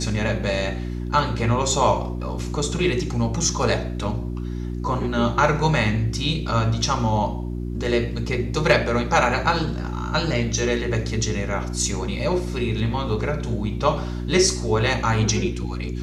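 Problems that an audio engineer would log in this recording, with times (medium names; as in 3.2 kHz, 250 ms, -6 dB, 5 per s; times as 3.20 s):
hum 60 Hz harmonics 6 -28 dBFS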